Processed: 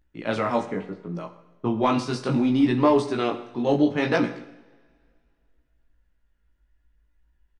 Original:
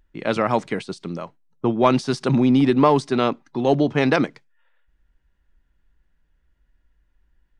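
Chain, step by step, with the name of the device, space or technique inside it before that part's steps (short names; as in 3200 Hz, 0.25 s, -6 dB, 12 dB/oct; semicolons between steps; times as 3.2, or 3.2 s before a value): double-tracked vocal (doubler 17 ms -7 dB; chorus 0.7 Hz, delay 16.5 ms, depth 4.7 ms); 0.66–1.15 LPF 1800 Hz -> 1000 Hz 12 dB/oct; two-slope reverb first 0.84 s, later 2.6 s, from -22 dB, DRR 9 dB; gain -2 dB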